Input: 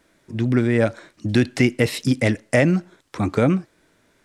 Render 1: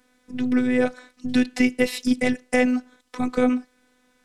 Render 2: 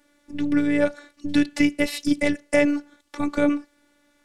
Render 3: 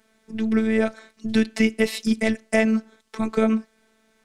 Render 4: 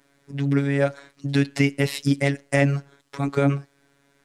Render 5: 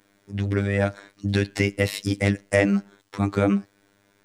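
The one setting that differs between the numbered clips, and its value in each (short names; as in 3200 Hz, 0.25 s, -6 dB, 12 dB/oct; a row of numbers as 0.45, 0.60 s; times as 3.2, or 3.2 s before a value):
robotiser, frequency: 250, 290, 220, 140, 100 Hz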